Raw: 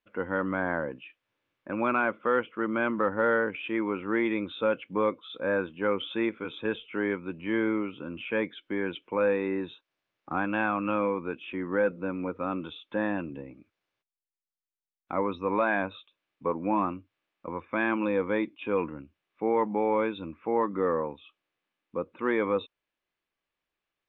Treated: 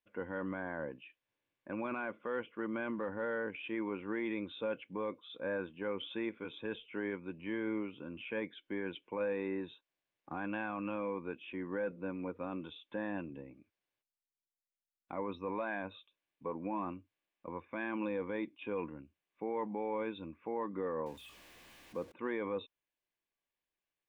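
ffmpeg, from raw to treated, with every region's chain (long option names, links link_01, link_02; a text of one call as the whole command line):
ffmpeg -i in.wav -filter_complex "[0:a]asettb=1/sr,asplit=3[link_01][link_02][link_03];[link_01]atrim=end=21.064[link_04];[link_02]atrim=start=21.06:end=22.12,asetpts=PTS-STARTPTS,afade=type=in:duration=0.004:curve=qsin,afade=type=out:start_time=1.056:duration=0.004:curve=qsin,aeval=exprs='val(0)+0.5*0.00631*sgn(val(0))':channel_layout=same,aeval=exprs='val(0)+0.000501*(sin(2*PI*60*n/s)+sin(2*PI*2*60*n/s)/2+sin(2*PI*3*60*n/s)/3+sin(2*PI*4*60*n/s)/4+sin(2*PI*5*60*n/s)/5)':channel_layout=same[link_05];[link_03]atrim=start=22.116[link_06];[link_04][link_05]acrossfade=duration=0.004:curve1=hsin:curve2=qsin[link_07];[link_07][link_06]acrossfade=duration=0.004:curve1=qsin:curve2=hsin,bandreject=frequency=1300:width=6.8,alimiter=limit=-20.5dB:level=0:latency=1:release=15,volume=-7.5dB" out.wav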